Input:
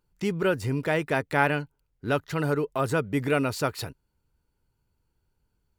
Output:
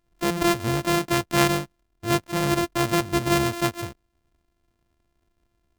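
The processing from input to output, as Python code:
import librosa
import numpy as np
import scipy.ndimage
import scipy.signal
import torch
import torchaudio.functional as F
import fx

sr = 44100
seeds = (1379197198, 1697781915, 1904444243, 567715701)

y = np.r_[np.sort(x[:len(x) // 128 * 128].reshape(-1, 128), axis=1).ravel(), x[len(x) // 128 * 128:]]
y = y * librosa.db_to_amplitude(3.0)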